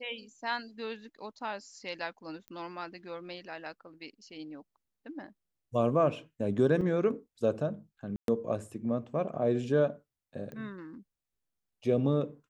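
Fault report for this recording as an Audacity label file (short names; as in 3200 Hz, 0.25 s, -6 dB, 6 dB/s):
2.480000	2.480000	pop -30 dBFS
6.810000	6.810000	gap 3.8 ms
8.160000	8.280000	gap 0.122 s
10.520000	10.520000	pop -31 dBFS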